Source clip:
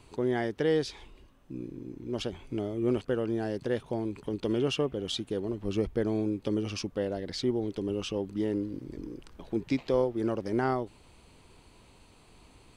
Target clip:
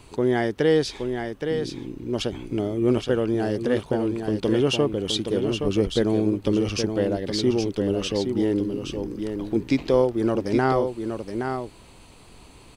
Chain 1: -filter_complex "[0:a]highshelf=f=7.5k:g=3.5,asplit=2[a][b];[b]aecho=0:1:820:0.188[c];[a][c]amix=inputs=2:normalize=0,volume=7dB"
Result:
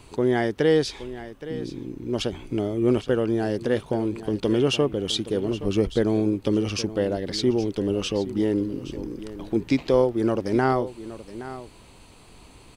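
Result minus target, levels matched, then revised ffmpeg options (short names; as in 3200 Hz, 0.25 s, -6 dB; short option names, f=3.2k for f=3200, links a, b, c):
echo-to-direct -8 dB
-filter_complex "[0:a]highshelf=f=7.5k:g=3.5,asplit=2[a][b];[b]aecho=0:1:820:0.473[c];[a][c]amix=inputs=2:normalize=0,volume=7dB"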